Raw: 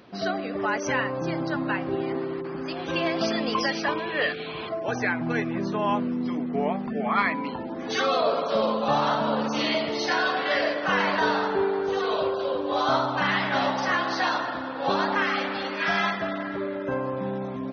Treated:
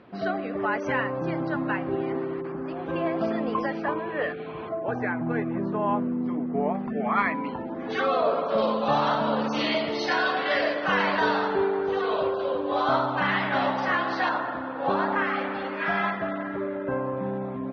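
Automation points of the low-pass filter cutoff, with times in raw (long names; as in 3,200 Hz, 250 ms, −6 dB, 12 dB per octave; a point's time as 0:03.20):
2,400 Hz
from 0:02.52 1,400 Hz
from 0:06.75 2,300 Hz
from 0:08.58 4,500 Hz
from 0:11.68 3,000 Hz
from 0:14.29 2,000 Hz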